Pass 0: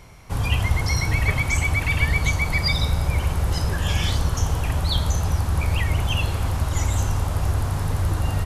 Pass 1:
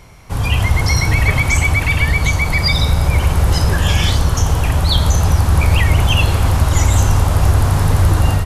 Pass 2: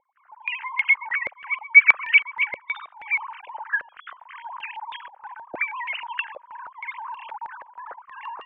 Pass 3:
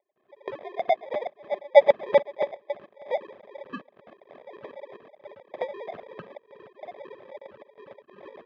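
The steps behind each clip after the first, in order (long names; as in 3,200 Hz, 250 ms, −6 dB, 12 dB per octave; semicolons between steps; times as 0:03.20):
in parallel at −2 dB: brickwall limiter −14 dBFS, peak gain reduction 7 dB; on the sum: automatic gain control; level −1 dB
three sine waves on the formant tracks; low-pass on a step sequencer 6.3 Hz 560–2,700 Hz; level −17.5 dB
notch filter 940 Hz, Q 8.3; decimation without filtering 31×; loudspeaker in its box 280–2,900 Hz, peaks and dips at 290 Hz −9 dB, 420 Hz +3 dB, 590 Hz +7 dB, 890 Hz −4 dB, 1,400 Hz +6 dB, 2,200 Hz −5 dB; level −6 dB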